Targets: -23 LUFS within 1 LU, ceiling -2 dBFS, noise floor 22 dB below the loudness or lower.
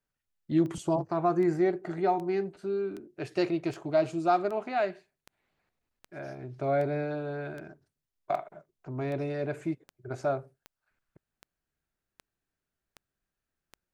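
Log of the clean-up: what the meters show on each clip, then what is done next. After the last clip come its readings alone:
clicks found 18; loudness -30.5 LUFS; peak level -13.5 dBFS; loudness target -23.0 LUFS
-> de-click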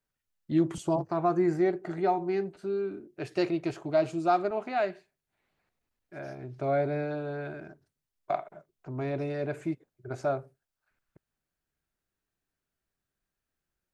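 clicks found 0; loudness -30.5 LUFS; peak level -13.5 dBFS; loudness target -23.0 LUFS
-> trim +7.5 dB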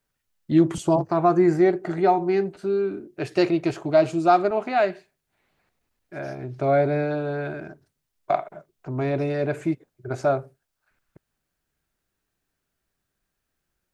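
loudness -23.0 LUFS; peak level -6.0 dBFS; noise floor -80 dBFS

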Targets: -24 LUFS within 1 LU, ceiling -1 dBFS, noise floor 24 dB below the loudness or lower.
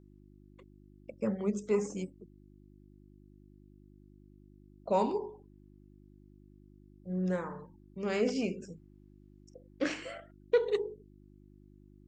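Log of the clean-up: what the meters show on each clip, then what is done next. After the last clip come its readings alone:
hum 50 Hz; highest harmonic 350 Hz; hum level -55 dBFS; loudness -34.0 LUFS; peak level -15.5 dBFS; loudness target -24.0 LUFS
-> de-hum 50 Hz, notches 7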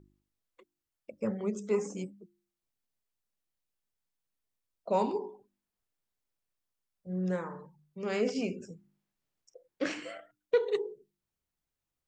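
hum not found; loudness -34.0 LUFS; peak level -15.5 dBFS; loudness target -24.0 LUFS
-> trim +10 dB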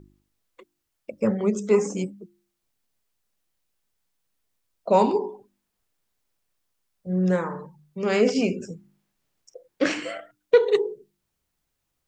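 loudness -24.0 LUFS; peak level -5.5 dBFS; noise floor -79 dBFS

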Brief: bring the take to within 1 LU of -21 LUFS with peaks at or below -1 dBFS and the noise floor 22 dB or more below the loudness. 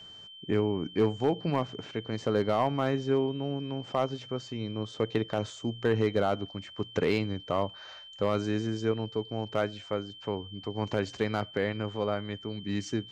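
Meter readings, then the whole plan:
clipped samples 0.3%; clipping level -17.0 dBFS; steady tone 3.1 kHz; tone level -46 dBFS; loudness -31.0 LUFS; peak level -17.0 dBFS; loudness target -21.0 LUFS
-> clip repair -17 dBFS; band-stop 3.1 kHz, Q 30; trim +10 dB

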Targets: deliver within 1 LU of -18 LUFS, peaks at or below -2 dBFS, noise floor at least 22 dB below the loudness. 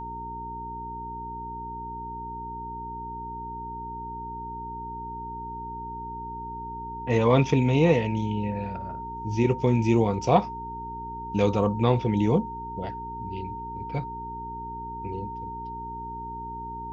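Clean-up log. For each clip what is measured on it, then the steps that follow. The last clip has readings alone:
hum 60 Hz; highest harmonic 420 Hz; hum level -40 dBFS; steady tone 920 Hz; tone level -34 dBFS; loudness -28.5 LUFS; peak level -6.0 dBFS; loudness target -18.0 LUFS
-> de-hum 60 Hz, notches 7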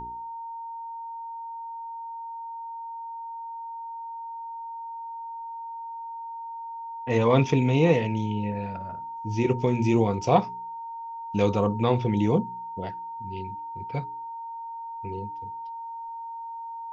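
hum not found; steady tone 920 Hz; tone level -34 dBFS
-> band-stop 920 Hz, Q 30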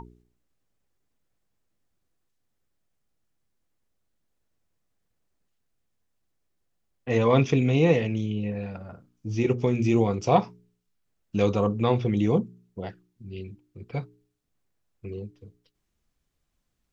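steady tone not found; loudness -24.5 LUFS; peak level -5.5 dBFS; loudness target -18.0 LUFS
-> trim +6.5 dB; peak limiter -2 dBFS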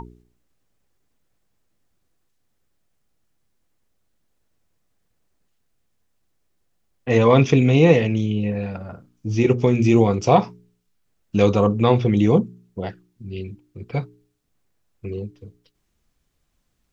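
loudness -18.5 LUFS; peak level -2.0 dBFS; noise floor -70 dBFS

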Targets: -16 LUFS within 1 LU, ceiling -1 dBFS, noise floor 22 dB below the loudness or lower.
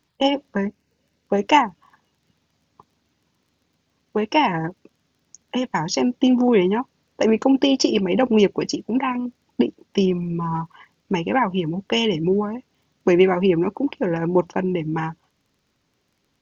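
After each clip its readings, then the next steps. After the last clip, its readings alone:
tick rate 20 per s; loudness -21.0 LUFS; peak level -1.5 dBFS; loudness target -16.0 LUFS
-> de-click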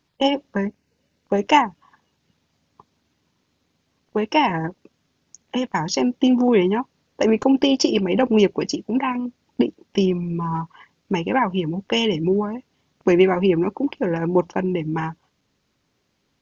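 tick rate 0 per s; loudness -21.0 LUFS; peak level -1.5 dBFS; loudness target -16.0 LUFS
-> trim +5 dB; peak limiter -1 dBFS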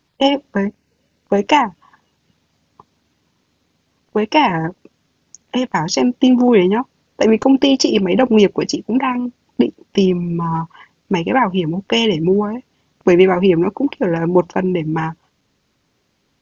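loudness -16.5 LUFS; peak level -1.0 dBFS; noise floor -65 dBFS

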